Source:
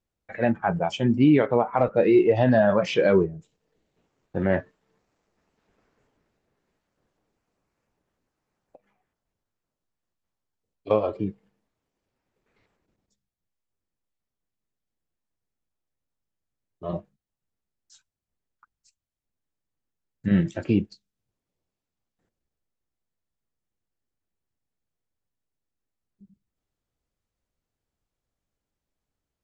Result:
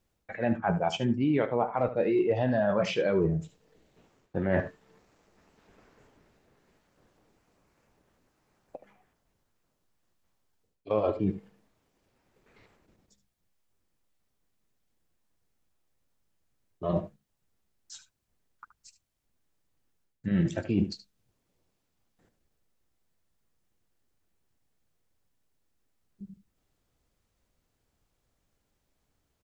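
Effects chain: reverse; compressor 6:1, threshold -33 dBFS, peak gain reduction 18 dB; reverse; echo 74 ms -13.5 dB; gain +8.5 dB

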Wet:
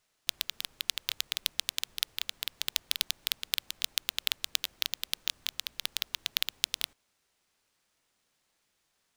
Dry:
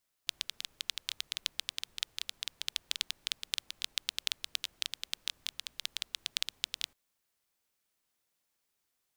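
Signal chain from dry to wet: sample-rate reducer 17000 Hz, jitter 0%; gain +4.5 dB

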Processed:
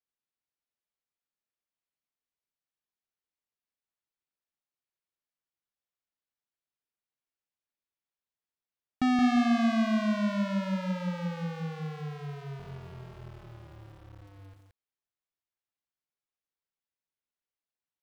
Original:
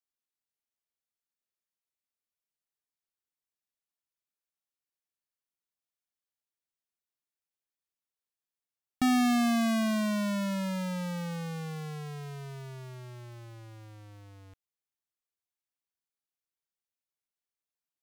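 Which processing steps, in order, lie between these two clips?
12.58–14.22 cycle switcher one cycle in 3, muted; air absorption 140 m; lo-fi delay 0.173 s, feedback 35%, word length 10-bit, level -4 dB

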